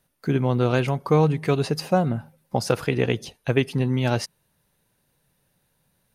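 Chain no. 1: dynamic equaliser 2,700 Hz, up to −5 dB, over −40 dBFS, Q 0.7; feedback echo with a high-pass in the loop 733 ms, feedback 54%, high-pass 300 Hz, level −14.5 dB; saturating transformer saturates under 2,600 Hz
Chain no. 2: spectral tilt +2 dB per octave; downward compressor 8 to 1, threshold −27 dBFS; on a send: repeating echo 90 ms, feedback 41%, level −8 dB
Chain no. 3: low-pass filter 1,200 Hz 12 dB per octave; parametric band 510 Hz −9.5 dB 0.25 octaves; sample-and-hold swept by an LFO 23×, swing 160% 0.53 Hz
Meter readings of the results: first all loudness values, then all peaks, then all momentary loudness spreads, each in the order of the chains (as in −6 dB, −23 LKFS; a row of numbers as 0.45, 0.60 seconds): −31.5, −32.5, −24.5 LKFS; −7.5, −13.5, −9.5 dBFS; 16, 6, 8 LU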